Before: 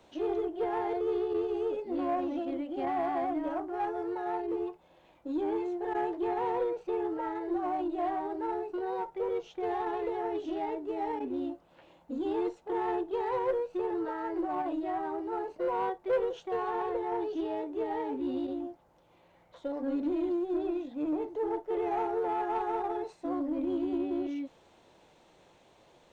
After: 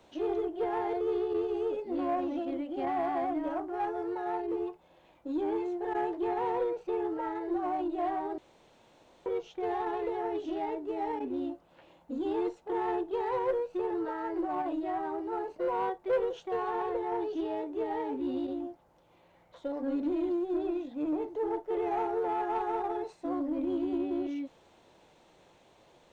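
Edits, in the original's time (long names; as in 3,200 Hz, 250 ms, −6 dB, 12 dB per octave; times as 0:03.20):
0:08.38–0:09.26: fill with room tone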